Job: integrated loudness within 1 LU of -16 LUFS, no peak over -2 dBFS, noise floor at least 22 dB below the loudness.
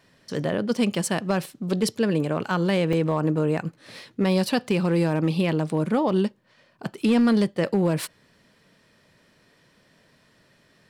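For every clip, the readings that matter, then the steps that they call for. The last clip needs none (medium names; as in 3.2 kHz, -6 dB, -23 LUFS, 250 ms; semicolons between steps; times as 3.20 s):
clipped samples 0.5%; clipping level -14.0 dBFS; dropouts 1; longest dropout 2.8 ms; loudness -24.0 LUFS; peak level -14.0 dBFS; loudness target -16.0 LUFS
-> clip repair -14 dBFS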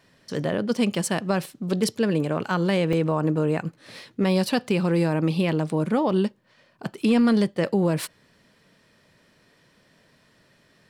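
clipped samples 0.0%; dropouts 1; longest dropout 2.8 ms
-> interpolate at 2.93 s, 2.8 ms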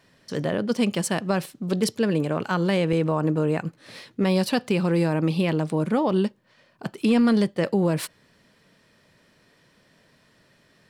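dropouts 0; loudness -24.0 LUFS; peak level -8.0 dBFS; loudness target -16.0 LUFS
-> trim +8 dB; peak limiter -2 dBFS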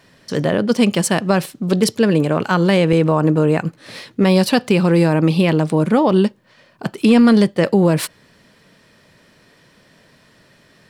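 loudness -16.0 LUFS; peak level -2.0 dBFS; noise floor -53 dBFS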